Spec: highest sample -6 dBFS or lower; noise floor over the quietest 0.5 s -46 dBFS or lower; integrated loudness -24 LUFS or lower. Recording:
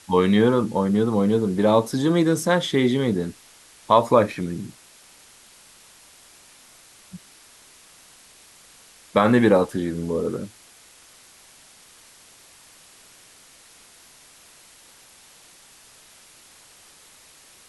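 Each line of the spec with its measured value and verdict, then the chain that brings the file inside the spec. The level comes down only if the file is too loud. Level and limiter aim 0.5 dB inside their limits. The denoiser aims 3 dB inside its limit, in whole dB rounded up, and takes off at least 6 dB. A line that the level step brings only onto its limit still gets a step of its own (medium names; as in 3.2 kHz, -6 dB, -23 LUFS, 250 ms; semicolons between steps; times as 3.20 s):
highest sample -4.0 dBFS: fail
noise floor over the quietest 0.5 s -51 dBFS: pass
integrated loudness -21.0 LUFS: fail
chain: trim -3.5 dB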